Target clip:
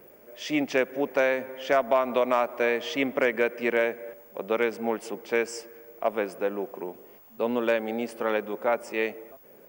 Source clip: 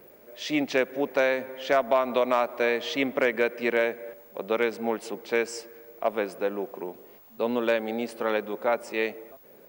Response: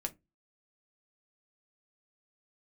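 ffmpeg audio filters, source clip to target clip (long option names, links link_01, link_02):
-af "equalizer=frequency=4000:width_type=o:width=0.22:gain=-10.5"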